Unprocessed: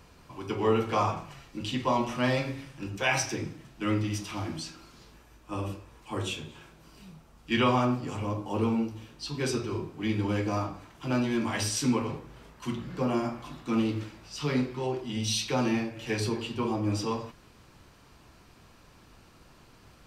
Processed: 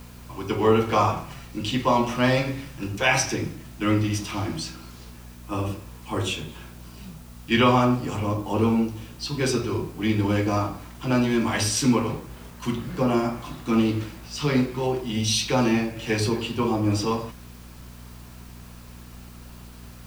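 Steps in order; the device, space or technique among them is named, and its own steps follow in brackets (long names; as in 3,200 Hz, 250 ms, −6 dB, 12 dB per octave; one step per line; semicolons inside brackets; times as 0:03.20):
video cassette with head-switching buzz (hum with harmonics 60 Hz, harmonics 4, −50 dBFS; white noise bed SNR 29 dB)
level +6 dB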